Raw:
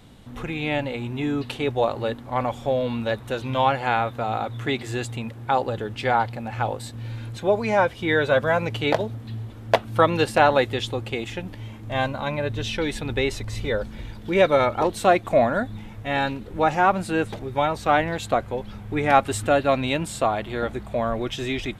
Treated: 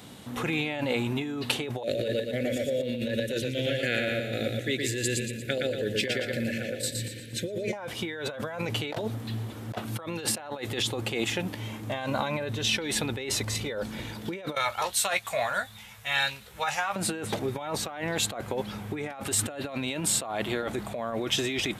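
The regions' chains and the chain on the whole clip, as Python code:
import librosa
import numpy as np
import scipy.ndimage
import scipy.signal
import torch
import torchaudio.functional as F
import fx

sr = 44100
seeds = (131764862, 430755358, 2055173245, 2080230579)

y = fx.chain(x, sr, fx.cheby1_bandstop(low_hz=560.0, high_hz=1700.0, order=3),
    fx.chopper(hz=2.0, depth_pct=60, duty_pct=50),
    fx.echo_feedback(ms=117, feedback_pct=42, wet_db=-4), at=(1.83, 7.73))
y = fx.chain(y, sr, fx.tone_stack(knobs='10-0-10'),
    fx.doubler(ms=15.0, db=-8.0), at=(14.55, 16.96))
y = fx.over_compress(y, sr, threshold_db=-30.0, ratio=-1.0)
y = scipy.signal.sosfilt(scipy.signal.bessel(2, 160.0, 'highpass', norm='mag', fs=sr, output='sos'), y)
y = fx.high_shelf(y, sr, hz=5500.0, db=8.0)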